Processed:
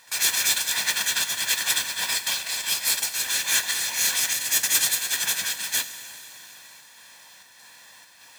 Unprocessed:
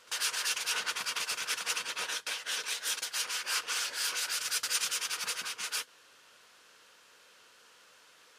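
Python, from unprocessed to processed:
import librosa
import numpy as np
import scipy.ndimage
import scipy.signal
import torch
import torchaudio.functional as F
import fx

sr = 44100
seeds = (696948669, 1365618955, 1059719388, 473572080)

p1 = fx.formant_shift(x, sr, semitones=5)
p2 = p1 + 0.81 * np.pad(p1, (int(1.2 * sr / 1000.0), 0))[:len(p1)]
p3 = fx.mod_noise(p2, sr, seeds[0], snr_db=10)
p4 = scipy.signal.sosfilt(scipy.signal.butter(2, 64.0, 'highpass', fs=sr, output='sos'), p3)
p5 = fx.volume_shaper(p4, sr, bpm=97, per_beat=1, depth_db=-11, release_ms=166.0, shape='slow start')
p6 = p4 + F.gain(torch.from_numpy(p5), 3.0).numpy()
y = fx.rev_plate(p6, sr, seeds[1], rt60_s=4.1, hf_ratio=0.9, predelay_ms=0, drr_db=10.0)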